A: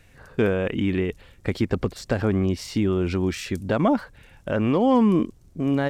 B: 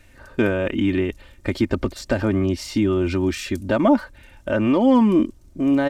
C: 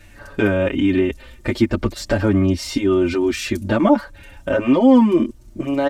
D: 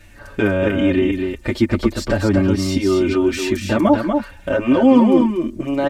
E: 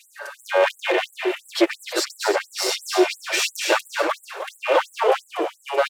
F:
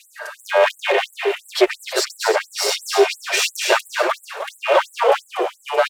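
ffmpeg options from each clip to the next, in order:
ffmpeg -i in.wav -af "aecho=1:1:3.3:0.61,volume=1.5dB" out.wav
ffmpeg -i in.wav -filter_complex "[0:a]asplit=2[link_01][link_02];[link_02]acompressor=threshold=-26dB:ratio=6,volume=-1dB[link_03];[link_01][link_03]amix=inputs=2:normalize=0,asplit=2[link_04][link_05];[link_05]adelay=6.4,afreqshift=-0.53[link_06];[link_04][link_06]amix=inputs=2:normalize=1,volume=3dB" out.wav
ffmpeg -i in.wav -af "aecho=1:1:240:0.562" out.wav
ffmpeg -i in.wav -filter_complex "[0:a]aeval=exprs='clip(val(0),-1,0.0841)':channel_layout=same,asplit=5[link_01][link_02][link_03][link_04][link_05];[link_02]adelay=309,afreqshift=-73,volume=-11dB[link_06];[link_03]adelay=618,afreqshift=-146,volume=-20.6dB[link_07];[link_04]adelay=927,afreqshift=-219,volume=-30.3dB[link_08];[link_05]adelay=1236,afreqshift=-292,volume=-39.9dB[link_09];[link_01][link_06][link_07][link_08][link_09]amix=inputs=5:normalize=0,afftfilt=real='re*gte(b*sr/1024,310*pow(7500/310,0.5+0.5*sin(2*PI*2.9*pts/sr)))':imag='im*gte(b*sr/1024,310*pow(7500/310,0.5+0.5*sin(2*PI*2.9*pts/sr)))':win_size=1024:overlap=0.75,volume=6.5dB" out.wav
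ffmpeg -i in.wav -af "afreqshift=34,volume=3dB" out.wav

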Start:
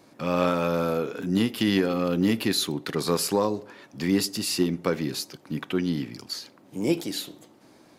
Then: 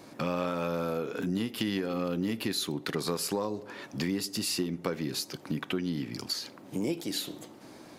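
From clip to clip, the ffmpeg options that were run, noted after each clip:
ffmpeg -i in.wav -af "acompressor=threshold=-35dB:ratio=4,volume=5dB" out.wav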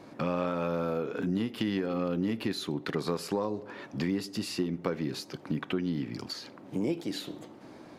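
ffmpeg -i in.wav -af "lowpass=frequency=2300:poles=1,volume=1dB" out.wav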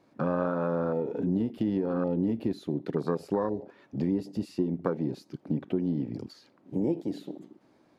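ffmpeg -i in.wav -af "afwtdn=0.0224,volume=2.5dB" out.wav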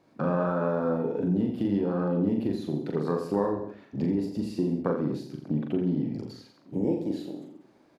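ffmpeg -i in.wav -af "aecho=1:1:40|84|132.4|185.6|244.2:0.631|0.398|0.251|0.158|0.1" out.wav

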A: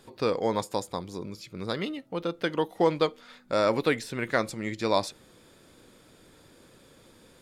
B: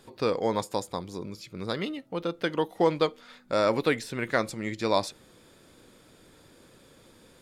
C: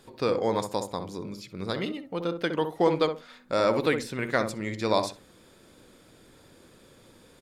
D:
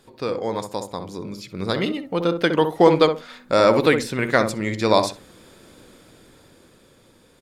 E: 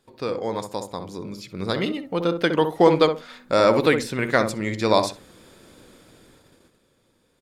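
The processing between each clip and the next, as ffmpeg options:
ffmpeg -i in.wav -af anull out.wav
ffmpeg -i in.wav -filter_complex "[0:a]asplit=2[link_01][link_02];[link_02]adelay=64,lowpass=frequency=990:poles=1,volume=-6dB,asplit=2[link_03][link_04];[link_04]adelay=64,lowpass=frequency=990:poles=1,volume=0.25,asplit=2[link_05][link_06];[link_06]adelay=64,lowpass=frequency=990:poles=1,volume=0.25[link_07];[link_01][link_03][link_05][link_07]amix=inputs=4:normalize=0" out.wav
ffmpeg -i in.wav -af "dynaudnorm=framelen=220:gausssize=13:maxgain=11.5dB" out.wav
ffmpeg -i in.wav -af "agate=range=-9dB:threshold=-51dB:ratio=16:detection=peak,volume=-1.5dB" out.wav

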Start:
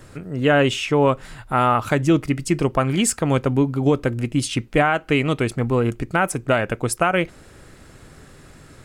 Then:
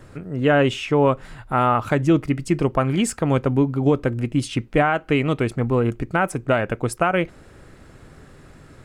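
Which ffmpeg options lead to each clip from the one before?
ffmpeg -i in.wav -af "highshelf=frequency=3100:gain=-8" out.wav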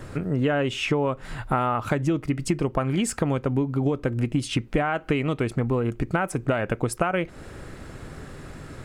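ffmpeg -i in.wav -af "acompressor=threshold=-26dB:ratio=10,volume=6dB" out.wav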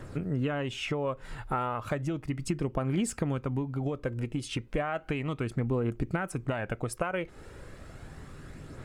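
ffmpeg -i in.wav -af "aphaser=in_gain=1:out_gain=1:delay=2.4:decay=0.32:speed=0.34:type=triangular,volume=-7.5dB" out.wav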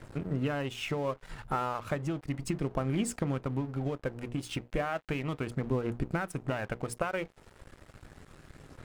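ffmpeg -i in.wav -af "bandreject=frequency=60:width_type=h:width=6,bandreject=frequency=120:width_type=h:width=6,bandreject=frequency=180:width_type=h:width=6,bandreject=frequency=240:width_type=h:width=6,bandreject=frequency=300:width_type=h:width=6,bandreject=frequency=360:width_type=h:width=6,bandreject=frequency=420:width_type=h:width=6,bandreject=frequency=480:width_type=h:width=6,aeval=exprs='sgn(val(0))*max(abs(val(0))-0.00447,0)':channel_layout=same" out.wav

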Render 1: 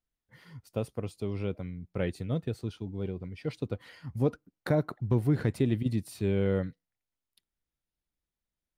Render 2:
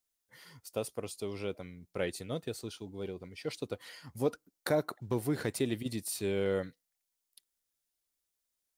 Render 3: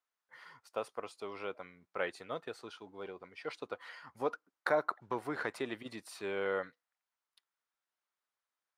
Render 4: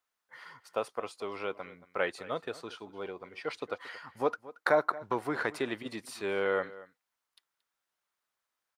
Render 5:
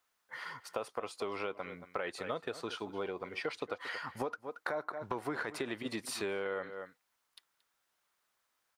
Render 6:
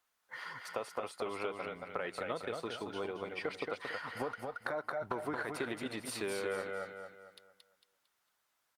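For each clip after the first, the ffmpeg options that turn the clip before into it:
ffmpeg -i in.wav -af "bass=frequency=250:gain=-12,treble=frequency=4000:gain=11" out.wav
ffmpeg -i in.wav -af "bandpass=frequency=1200:width_type=q:width=1.6:csg=0,volume=7.5dB" out.wav
ffmpeg -i in.wav -filter_complex "[0:a]asplit=2[link_01][link_02];[link_02]adelay=227.4,volume=-18dB,highshelf=frequency=4000:gain=-5.12[link_03];[link_01][link_03]amix=inputs=2:normalize=0,volume=5dB" out.wav
ffmpeg -i in.wav -af "alimiter=limit=-22dB:level=0:latency=1:release=45,acompressor=threshold=-40dB:ratio=6,volume=6dB" out.wav
ffmpeg -i in.wav -filter_complex "[0:a]asplit=2[link_01][link_02];[link_02]aecho=0:1:226|452|678|904|1130:0.596|0.22|0.0815|0.0302|0.0112[link_03];[link_01][link_03]amix=inputs=2:normalize=0,volume=-1dB" -ar 48000 -c:a libopus -b:a 48k out.opus

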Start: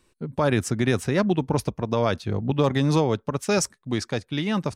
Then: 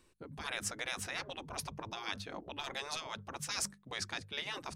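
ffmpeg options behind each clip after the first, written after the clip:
ffmpeg -i in.wav -af "bandreject=frequency=50:width_type=h:width=6,bandreject=frequency=100:width_type=h:width=6,bandreject=frequency=150:width_type=h:width=6,bandreject=frequency=200:width_type=h:width=6,afftfilt=real='re*lt(hypot(re,im),0.126)':imag='im*lt(hypot(re,im),0.126)':win_size=1024:overlap=0.75,areverse,acompressor=mode=upward:threshold=-47dB:ratio=2.5,areverse,volume=-5dB" out.wav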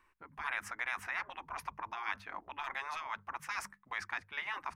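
ffmpeg -i in.wav -af "equalizer=frequency=125:width_type=o:width=1:gain=-10,equalizer=frequency=250:width_type=o:width=1:gain=-4,equalizer=frequency=500:width_type=o:width=1:gain=-9,equalizer=frequency=1000:width_type=o:width=1:gain=11,equalizer=frequency=2000:width_type=o:width=1:gain=10,equalizer=frequency=4000:width_type=o:width=1:gain=-9,equalizer=frequency=8000:width_type=o:width=1:gain=-9,volume=-4dB" out.wav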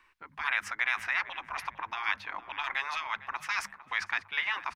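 ffmpeg -i in.wav -filter_complex "[0:a]acrossover=split=150|4300[link_01][link_02][link_03];[link_02]crystalizer=i=8.5:c=0[link_04];[link_01][link_04][link_03]amix=inputs=3:normalize=0,asplit=2[link_05][link_06];[link_06]adelay=454,lowpass=frequency=1700:poles=1,volume=-14dB,asplit=2[link_07][link_08];[link_08]adelay=454,lowpass=frequency=1700:poles=1,volume=0.49,asplit=2[link_09][link_10];[link_10]adelay=454,lowpass=frequency=1700:poles=1,volume=0.49,asplit=2[link_11][link_12];[link_12]adelay=454,lowpass=frequency=1700:poles=1,volume=0.49,asplit=2[link_13][link_14];[link_14]adelay=454,lowpass=frequency=1700:poles=1,volume=0.49[link_15];[link_05][link_07][link_09][link_11][link_13][link_15]amix=inputs=6:normalize=0" out.wav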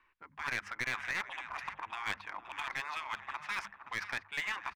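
ffmpeg -i in.wav -af "aecho=1:1:522:0.251,adynamicsmooth=sensitivity=6:basefreq=3700,aeval=exprs='clip(val(0),-1,0.0447)':channel_layout=same,volume=-4.5dB" out.wav

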